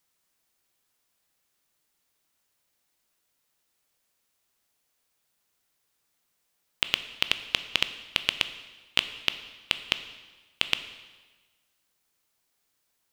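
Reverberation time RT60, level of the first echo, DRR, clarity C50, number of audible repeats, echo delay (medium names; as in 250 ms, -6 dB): 1.3 s, no echo, 10.5 dB, 12.5 dB, no echo, no echo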